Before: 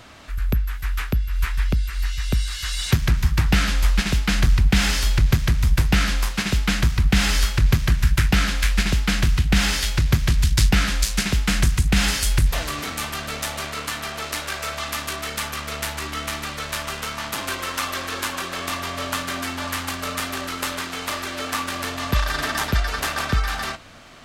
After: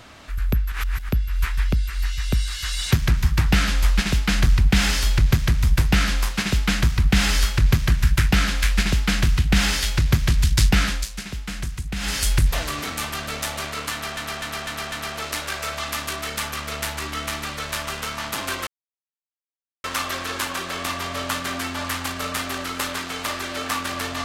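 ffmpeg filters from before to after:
-filter_complex "[0:a]asplit=10[a][b][c][d][e][f][g][h][i][j];[a]atrim=end=0.722[k];[b]atrim=start=0.718:end=1.092,asetpts=PTS-STARTPTS,areverse[l];[c]atrim=start=1.088:end=11.09,asetpts=PTS-STARTPTS,afade=t=out:st=9.772:d=0.23:silence=0.298538[m];[d]atrim=start=11.09:end=11.99,asetpts=PTS-STARTPTS,volume=-10.5dB[n];[e]atrim=start=11.99:end=14.172,asetpts=PTS-STARTPTS,afade=t=in:d=0.23:silence=0.298538[o];[f]atrim=start=13.918:end=14.172[p];[g]atrim=start=13.918:end=14.172[q];[h]atrim=start=13.918:end=14.172[r];[i]atrim=start=13.918:end=17.67,asetpts=PTS-STARTPTS,afade=t=out:st=3.748:d=0.004:c=hsin,apad=pad_dur=1.17[s];[j]atrim=start=17.67,asetpts=PTS-STARTPTS,afade=t=in:d=0.004:c=hsin[t];[k][l]acrossfade=d=0.004:c1=hsin:c2=hsin[u];[m][n][o]concat=n=3:v=0:a=1[v];[u][v]acrossfade=d=0.004:c1=hsin:c2=hsin[w];[w][p]acrossfade=d=0.004:c1=hsin:c2=hsin[x];[x][q]acrossfade=d=0.004:c1=hsin:c2=hsin[y];[y][r]acrossfade=d=0.004:c1=hsin:c2=hsin[z];[s][t]concat=n=2:v=0:a=1[aa];[z][aa]acrossfade=d=0.004:c1=hsin:c2=hsin"

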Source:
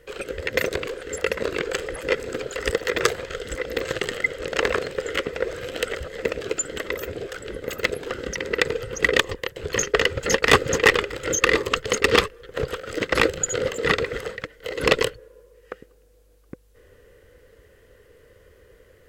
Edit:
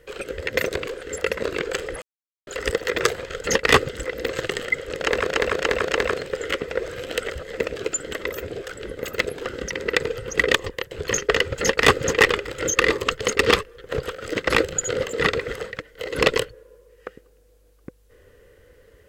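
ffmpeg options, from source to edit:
-filter_complex "[0:a]asplit=8[a][b][c][d][e][f][g][h];[a]atrim=end=2.02,asetpts=PTS-STARTPTS,afade=t=out:st=2.016:d=0.004:c=hsin[i];[b]atrim=start=2.02:end=2.47,asetpts=PTS-STARTPTS,volume=0[j];[c]atrim=start=2.47:end=3.412,asetpts=PTS-STARTPTS,afade=t=in:d=0.004:c=hsin[k];[d]atrim=start=10.198:end=10.682[l];[e]atrim=start=3.408:end=4.822[m];[f]atrim=start=4.528:end=4.822[n];[g]atrim=start=4.528:end=4.822[o];[h]atrim=start=4.528[p];[i][j][k]concat=n=3:v=0:a=1[q];[q][l]acrossfade=d=0.004:c1=hsin:c2=hsin[r];[r][m]acrossfade=d=0.004:c1=hsin:c2=hsin[s];[s][n]acrossfade=d=0.004:c1=hsin:c2=hsin[t];[t][o]acrossfade=d=0.004:c1=hsin:c2=hsin[u];[u][p]acrossfade=d=0.004:c1=hsin:c2=hsin"

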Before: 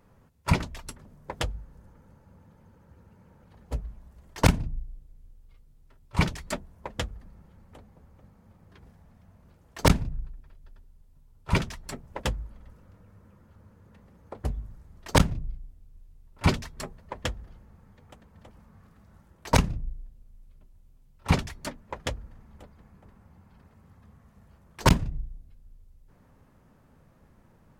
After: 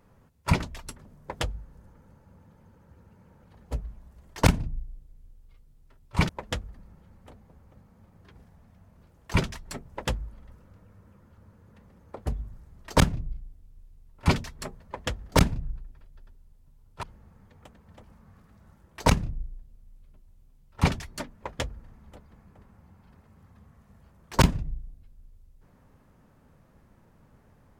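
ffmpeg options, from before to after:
-filter_complex "[0:a]asplit=5[a][b][c][d][e];[a]atrim=end=6.292[f];[b]atrim=start=6.758:end=9.812[g];[c]atrim=start=11.518:end=17.502[h];[d]atrim=start=9.808:end=11.522[i];[e]atrim=start=17.498[j];[f][g]acrossfade=d=0.004:c1=hsin:c2=hsin[k];[k][h]acrossfade=d=0.004:c1=hsin:c2=hsin[l];[l][i]acrossfade=d=0.004:c1=hsin:c2=hsin[m];[m][j]acrossfade=d=0.004:c1=hsin:c2=hsin"

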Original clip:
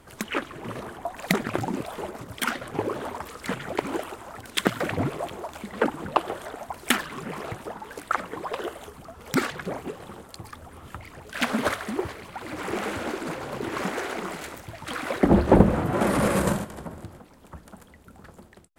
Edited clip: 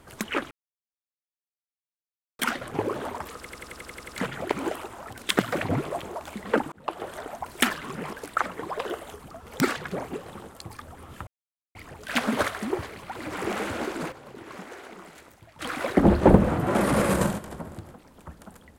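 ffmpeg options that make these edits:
-filter_complex "[0:a]asplit=16[a][b][c][d][e][f][g][h][i][j][k][l][m][n][o][p];[a]atrim=end=0.51,asetpts=PTS-STARTPTS,afade=t=out:st=0.506:d=0.004:c=hsin[q];[b]atrim=start=0.51:end=2.39,asetpts=PTS-STARTPTS,volume=0[r];[c]atrim=start=2.39:end=3.452,asetpts=PTS-STARTPTS,afade=t=in:d=0.004:c=hsin[s];[d]atrim=start=3.358:end=3.452[t];[e]atrim=start=3.358:end=3.452[u];[f]atrim=start=3.358:end=3.452[v];[g]atrim=start=3.358:end=3.452[w];[h]atrim=start=3.358:end=3.452[x];[i]atrim=start=3.358:end=3.452[y];[j]atrim=start=3.358:end=3.452[z];[k]atrim=start=3.358:end=6,asetpts=PTS-STARTPTS,afade=t=out:st=2.638:d=0.004:c=hsin[aa];[l]atrim=start=6:end=7.412,asetpts=PTS-STARTPTS,afade=t=in:d=0.46[ab];[m]atrim=start=7.868:end=11.01,asetpts=PTS-STARTPTS,afade=t=out:st=3.138:d=0.004:c=hsin,apad=pad_dur=0.48[ac];[n]atrim=start=11.01:end=13.38,asetpts=PTS-STARTPTS,afade=t=in:d=0.004:c=hsin,afade=t=out:st=2.25:d=0.12:c=log:silence=0.251189[ad];[o]atrim=start=13.38:end=14.85,asetpts=PTS-STARTPTS,volume=-12dB[ae];[p]atrim=start=14.85,asetpts=PTS-STARTPTS,afade=t=in:d=0.12:c=log:silence=0.251189[af];[q][r][s]concat=n=3:v=0:a=1[ag];[ag][t]acrossfade=d=0.004:c1=hsin:c2=hsin[ah];[ah][u]acrossfade=d=0.004:c1=hsin:c2=hsin[ai];[ai][v]acrossfade=d=0.004:c1=hsin:c2=hsin[aj];[aj][w]acrossfade=d=0.004:c1=hsin:c2=hsin[ak];[ak][x]acrossfade=d=0.004:c1=hsin:c2=hsin[al];[al][y]acrossfade=d=0.004:c1=hsin:c2=hsin[am];[am][z]acrossfade=d=0.004:c1=hsin:c2=hsin[an];[aa][ab]concat=n=2:v=0:a=1[ao];[an][ao]acrossfade=d=0.004:c1=hsin:c2=hsin[ap];[ac][ad][ae][af]concat=n=4:v=0:a=1[aq];[ap][aq]acrossfade=d=0.004:c1=hsin:c2=hsin"

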